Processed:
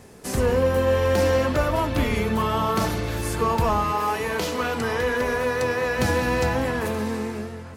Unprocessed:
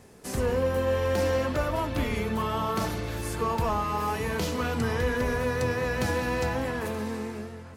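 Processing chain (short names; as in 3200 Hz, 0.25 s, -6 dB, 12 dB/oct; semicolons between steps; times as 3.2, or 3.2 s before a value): 3.92–5.99 tone controls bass -10 dB, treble -2 dB; gain +5.5 dB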